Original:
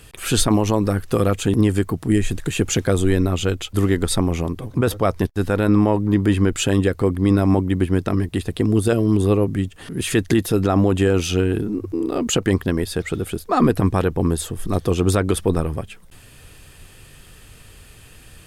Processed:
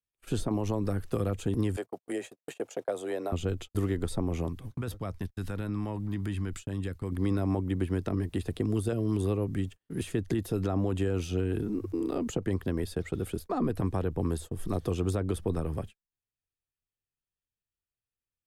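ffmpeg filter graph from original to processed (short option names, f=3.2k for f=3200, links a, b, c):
-filter_complex "[0:a]asettb=1/sr,asplit=3[a][b][c];[a]atrim=end=1.764[d];[b]atrim=start=1.76:end=3.32,asetpts=PTS-STARTPTS,afade=t=in:d=0.004:c=qsin,afade=t=out:st=1.556:d=0.004:c=qsin,agate=range=-23dB:threshold=-27dB:ratio=16:release=100:detection=peak,afreqshift=14,highpass=f=630:t=q:w=2.7[e];[c]atrim=start=3.316[f];[d][e]acrossfade=d=0.004:c1=hsin:c2=qsin[g];[g][f]acrossfade=d=0.004:c1=qsin:c2=hsin,asettb=1/sr,asplit=3[h][i][j];[h]atrim=end=4.494[k];[i]atrim=start=4.49:end=7.12,asetpts=PTS-STARTPTS,afade=t=in:d=0.004:c=qsin,afade=t=out:st=2.626:d=0.004:c=qsin,equalizer=f=490:w=0.63:g=-9.5,acompressor=threshold=-24dB:ratio=2:attack=3.2:release=140:knee=1:detection=peak[l];[j]atrim=start=7.116[m];[k][l]acrossfade=d=0.004:c1=hsin:c2=qsin[n];[n][m]acrossfade=d=0.004:c1=qsin:c2=hsin,acrossover=split=100|280|830[o][p][q][r];[o]acompressor=threshold=-26dB:ratio=4[s];[p]acompressor=threshold=-27dB:ratio=4[t];[q]acompressor=threshold=-25dB:ratio=4[u];[r]acompressor=threshold=-38dB:ratio=4[v];[s][t][u][v]amix=inputs=4:normalize=0,agate=range=-47dB:threshold=-32dB:ratio=16:detection=peak,volume=-6.5dB"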